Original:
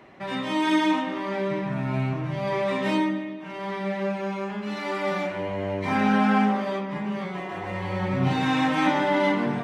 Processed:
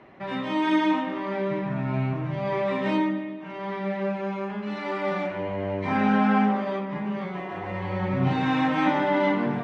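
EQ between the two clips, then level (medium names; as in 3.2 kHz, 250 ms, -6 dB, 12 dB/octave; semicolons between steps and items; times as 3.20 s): distance through air 50 m; treble shelf 5.3 kHz -11.5 dB; 0.0 dB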